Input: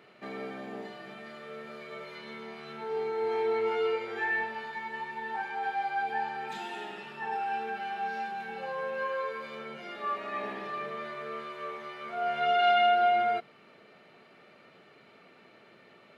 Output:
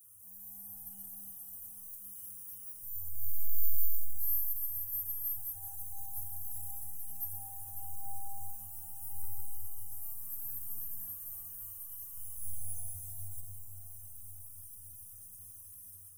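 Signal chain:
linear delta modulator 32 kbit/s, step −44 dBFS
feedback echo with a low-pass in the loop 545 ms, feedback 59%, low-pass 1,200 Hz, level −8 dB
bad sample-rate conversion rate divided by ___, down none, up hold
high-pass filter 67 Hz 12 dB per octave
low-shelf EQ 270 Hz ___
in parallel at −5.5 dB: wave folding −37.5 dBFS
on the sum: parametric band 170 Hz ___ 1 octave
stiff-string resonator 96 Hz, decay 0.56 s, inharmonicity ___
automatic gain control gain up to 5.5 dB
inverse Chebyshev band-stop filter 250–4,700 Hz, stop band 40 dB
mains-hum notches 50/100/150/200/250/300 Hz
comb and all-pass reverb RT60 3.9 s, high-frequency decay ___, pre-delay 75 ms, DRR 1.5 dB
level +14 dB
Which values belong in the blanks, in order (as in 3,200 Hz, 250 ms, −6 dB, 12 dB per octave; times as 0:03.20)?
3×, −6.5 dB, −8.5 dB, 0.008, 0.65×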